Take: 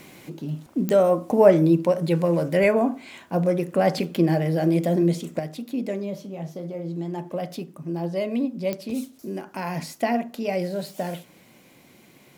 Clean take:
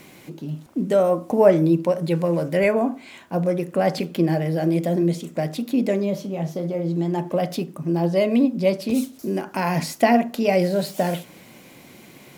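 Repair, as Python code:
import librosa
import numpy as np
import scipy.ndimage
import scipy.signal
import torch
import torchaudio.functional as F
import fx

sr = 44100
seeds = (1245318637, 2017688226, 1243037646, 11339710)

y = fx.fix_declick_ar(x, sr, threshold=10.0)
y = fx.fix_level(y, sr, at_s=5.39, step_db=7.0)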